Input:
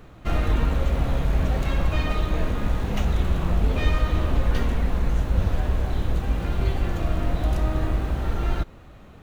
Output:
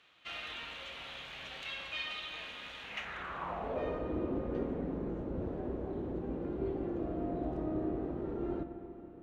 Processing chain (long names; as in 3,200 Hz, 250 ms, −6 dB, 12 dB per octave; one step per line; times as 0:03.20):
band-pass filter sweep 3,100 Hz → 350 Hz, 0:02.78–0:04.08
spring reverb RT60 3 s, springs 33/46 ms, chirp 70 ms, DRR 7.5 dB